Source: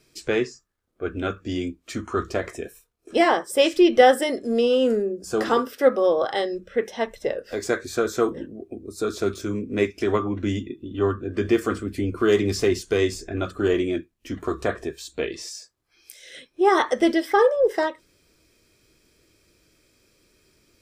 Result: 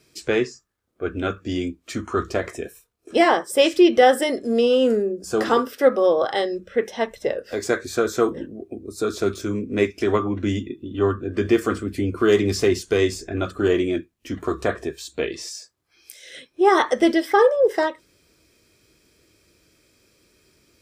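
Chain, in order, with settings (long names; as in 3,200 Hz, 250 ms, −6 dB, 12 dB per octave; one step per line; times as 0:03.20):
high-pass filter 44 Hz
boost into a limiter +5.5 dB
level −3.5 dB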